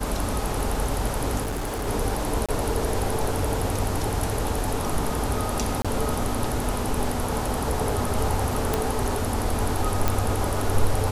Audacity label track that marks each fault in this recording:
1.420000	1.880000	clipped -25 dBFS
2.460000	2.490000	gap 26 ms
5.820000	5.850000	gap 26 ms
8.740000	8.740000	pop
10.080000	10.080000	pop

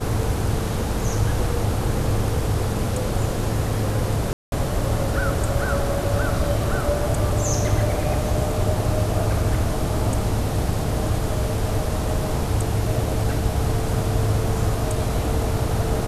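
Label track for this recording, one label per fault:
4.330000	4.520000	gap 0.191 s

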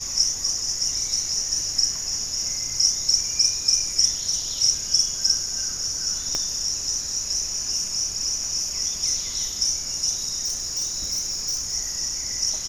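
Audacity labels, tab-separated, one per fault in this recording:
6.350000	6.350000	pop -11 dBFS
10.440000	11.750000	clipped -22 dBFS

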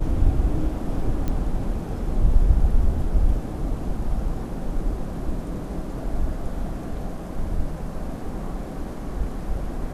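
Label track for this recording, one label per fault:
1.280000	1.280000	pop -14 dBFS

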